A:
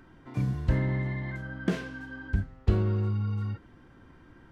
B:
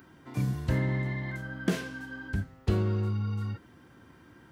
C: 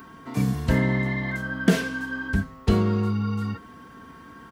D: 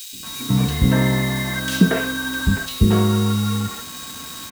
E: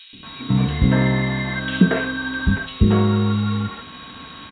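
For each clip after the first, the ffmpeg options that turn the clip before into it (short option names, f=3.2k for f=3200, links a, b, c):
-af "highpass=86,aemphasis=mode=production:type=50kf"
-af "aecho=1:1:4.4:0.49,aeval=exprs='val(0)+0.00178*sin(2*PI*1100*n/s)':c=same,volume=7.5dB"
-filter_complex "[0:a]aeval=exprs='val(0)+0.0126*sin(2*PI*3800*n/s)':c=same,acrusher=bits=5:mix=0:aa=0.000001,acrossover=split=380|2500[a][b][c];[a]adelay=130[d];[b]adelay=230[e];[d][e][c]amix=inputs=3:normalize=0,volume=6dB"
-ar 8000 -c:a adpcm_g726 -b:a 40k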